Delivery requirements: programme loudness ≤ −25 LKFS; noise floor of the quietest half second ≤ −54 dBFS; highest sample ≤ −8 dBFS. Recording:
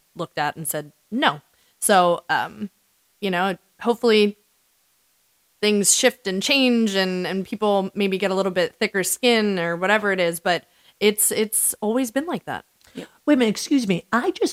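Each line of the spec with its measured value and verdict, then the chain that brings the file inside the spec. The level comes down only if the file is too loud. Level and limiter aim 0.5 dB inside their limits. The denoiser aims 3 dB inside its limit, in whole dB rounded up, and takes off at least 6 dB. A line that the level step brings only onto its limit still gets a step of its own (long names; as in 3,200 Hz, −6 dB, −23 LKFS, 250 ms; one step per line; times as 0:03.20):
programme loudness −21.0 LKFS: out of spec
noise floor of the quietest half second −64 dBFS: in spec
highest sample −3.0 dBFS: out of spec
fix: level −4.5 dB
brickwall limiter −8.5 dBFS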